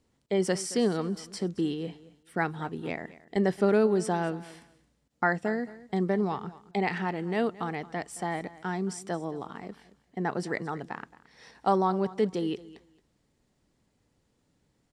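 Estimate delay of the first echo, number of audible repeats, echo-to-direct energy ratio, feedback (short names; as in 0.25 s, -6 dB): 0.222 s, 2, -18.5 dB, 18%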